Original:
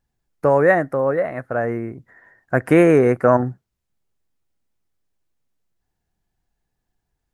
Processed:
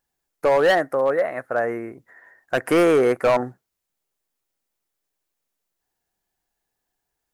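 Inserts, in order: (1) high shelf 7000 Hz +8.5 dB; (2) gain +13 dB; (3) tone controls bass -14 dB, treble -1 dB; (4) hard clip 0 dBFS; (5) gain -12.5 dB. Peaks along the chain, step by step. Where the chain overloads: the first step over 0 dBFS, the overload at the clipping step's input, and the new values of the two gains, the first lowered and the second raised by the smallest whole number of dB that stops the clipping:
-1.5, +11.5, +9.5, 0.0, -12.5 dBFS; step 2, 9.5 dB; step 2 +3 dB, step 5 -2.5 dB

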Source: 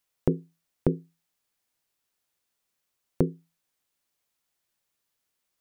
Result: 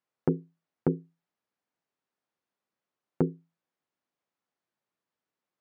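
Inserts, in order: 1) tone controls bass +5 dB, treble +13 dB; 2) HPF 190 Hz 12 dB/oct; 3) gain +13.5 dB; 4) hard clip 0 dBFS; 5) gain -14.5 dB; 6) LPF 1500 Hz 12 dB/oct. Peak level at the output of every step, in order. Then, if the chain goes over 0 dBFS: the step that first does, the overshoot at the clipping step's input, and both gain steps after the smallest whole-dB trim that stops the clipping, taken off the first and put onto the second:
-4.0, -9.0, +4.5, 0.0, -14.5, -14.0 dBFS; step 3, 4.5 dB; step 3 +8.5 dB, step 5 -9.5 dB

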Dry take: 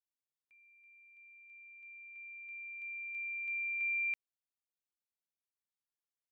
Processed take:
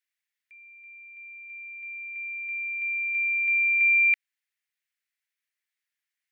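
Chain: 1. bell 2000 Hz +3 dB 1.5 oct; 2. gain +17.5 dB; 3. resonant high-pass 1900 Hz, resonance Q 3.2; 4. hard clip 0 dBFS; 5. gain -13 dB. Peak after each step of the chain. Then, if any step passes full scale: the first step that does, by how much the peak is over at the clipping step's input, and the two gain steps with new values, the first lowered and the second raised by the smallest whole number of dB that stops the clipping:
-28.5, -11.0, -3.5, -3.5, -16.5 dBFS; no overload

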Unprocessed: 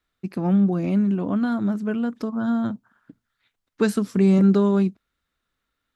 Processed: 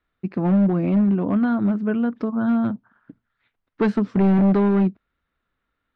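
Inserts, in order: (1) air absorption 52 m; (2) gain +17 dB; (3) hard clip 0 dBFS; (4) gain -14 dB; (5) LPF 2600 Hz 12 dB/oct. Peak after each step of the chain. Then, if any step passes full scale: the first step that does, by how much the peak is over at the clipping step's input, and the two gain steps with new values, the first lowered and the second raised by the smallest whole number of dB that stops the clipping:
-8.0, +9.0, 0.0, -14.0, -13.5 dBFS; step 2, 9.0 dB; step 2 +8 dB, step 4 -5 dB

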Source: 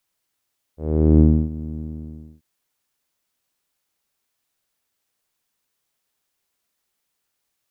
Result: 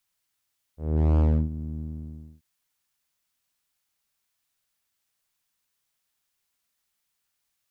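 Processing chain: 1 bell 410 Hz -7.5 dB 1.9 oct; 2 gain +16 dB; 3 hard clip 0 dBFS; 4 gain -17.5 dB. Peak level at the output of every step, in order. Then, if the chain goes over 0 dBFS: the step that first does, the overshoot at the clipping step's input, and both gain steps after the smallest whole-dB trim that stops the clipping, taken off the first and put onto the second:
-7.0, +9.0, 0.0, -17.5 dBFS; step 2, 9.0 dB; step 2 +7 dB, step 4 -8.5 dB

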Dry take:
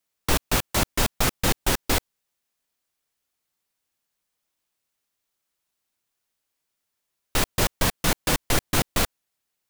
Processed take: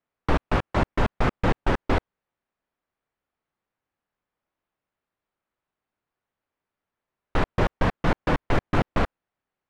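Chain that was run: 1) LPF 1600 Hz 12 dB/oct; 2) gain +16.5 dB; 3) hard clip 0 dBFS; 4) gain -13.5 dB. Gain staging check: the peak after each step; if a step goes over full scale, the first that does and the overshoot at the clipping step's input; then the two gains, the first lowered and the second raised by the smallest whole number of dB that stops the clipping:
-10.0, +6.5, 0.0, -13.5 dBFS; step 2, 6.5 dB; step 2 +9.5 dB, step 4 -6.5 dB

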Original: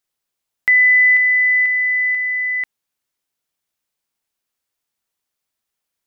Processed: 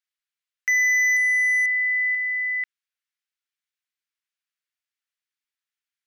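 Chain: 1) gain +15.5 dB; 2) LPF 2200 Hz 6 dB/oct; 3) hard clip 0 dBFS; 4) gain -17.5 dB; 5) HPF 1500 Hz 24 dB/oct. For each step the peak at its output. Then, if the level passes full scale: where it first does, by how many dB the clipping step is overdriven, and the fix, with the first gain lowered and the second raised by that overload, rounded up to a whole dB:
+7.0, +5.0, 0.0, -17.5, -16.5 dBFS; step 1, 5.0 dB; step 1 +10.5 dB, step 4 -12.5 dB

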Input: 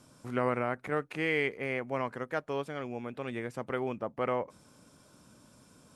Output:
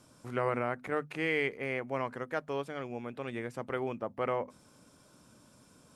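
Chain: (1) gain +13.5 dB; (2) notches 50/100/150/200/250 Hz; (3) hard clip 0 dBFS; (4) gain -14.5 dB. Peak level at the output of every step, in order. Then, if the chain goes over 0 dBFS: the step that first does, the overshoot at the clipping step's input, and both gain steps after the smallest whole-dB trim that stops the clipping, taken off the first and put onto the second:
-3.0, -3.5, -3.5, -18.0 dBFS; no overload

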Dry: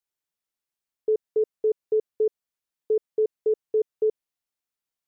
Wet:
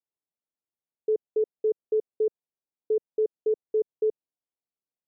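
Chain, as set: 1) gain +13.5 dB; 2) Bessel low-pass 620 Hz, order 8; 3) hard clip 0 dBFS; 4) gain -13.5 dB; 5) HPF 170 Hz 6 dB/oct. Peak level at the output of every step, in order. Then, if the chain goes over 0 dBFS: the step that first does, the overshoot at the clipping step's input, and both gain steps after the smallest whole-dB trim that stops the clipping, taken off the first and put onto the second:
-3.5, -5.0, -5.0, -18.5, -19.0 dBFS; no overload

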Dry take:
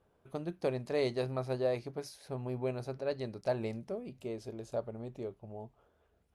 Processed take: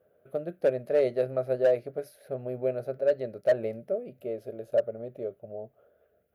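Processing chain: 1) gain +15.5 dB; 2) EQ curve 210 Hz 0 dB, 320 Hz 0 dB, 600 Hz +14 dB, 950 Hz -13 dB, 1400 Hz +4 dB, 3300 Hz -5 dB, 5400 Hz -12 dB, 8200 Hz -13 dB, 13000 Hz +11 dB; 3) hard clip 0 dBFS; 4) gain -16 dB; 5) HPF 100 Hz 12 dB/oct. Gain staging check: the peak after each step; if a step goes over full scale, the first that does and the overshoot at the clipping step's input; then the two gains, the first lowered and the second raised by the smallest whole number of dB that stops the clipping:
-4.5, +5.0, 0.0, -16.0, -14.5 dBFS; step 2, 5.0 dB; step 1 +10.5 dB, step 4 -11 dB

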